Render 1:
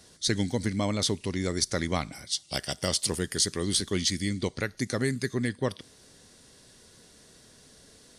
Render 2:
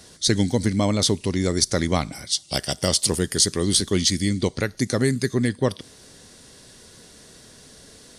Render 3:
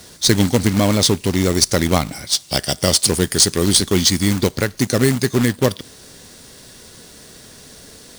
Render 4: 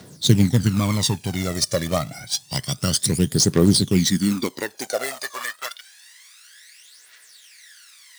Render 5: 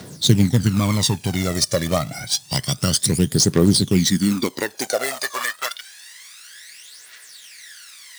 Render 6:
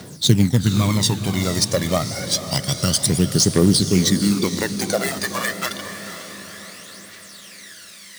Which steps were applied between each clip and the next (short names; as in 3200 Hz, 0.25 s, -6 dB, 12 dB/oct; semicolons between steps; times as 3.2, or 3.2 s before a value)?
dynamic EQ 1900 Hz, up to -4 dB, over -44 dBFS, Q 0.8; gain +7.5 dB
companded quantiser 4-bit; gain +5 dB
high-pass sweep 130 Hz -> 1900 Hz, 3.9–5.9; phaser 0.28 Hz, delay 1.8 ms, feedback 67%; gain -9 dB
in parallel at +3 dB: compressor, threshold -27 dBFS, peak gain reduction 16.5 dB; on the sum: crackle 470/s -48 dBFS; gain -1.5 dB
diffused feedback echo 0.494 s, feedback 54%, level -10 dB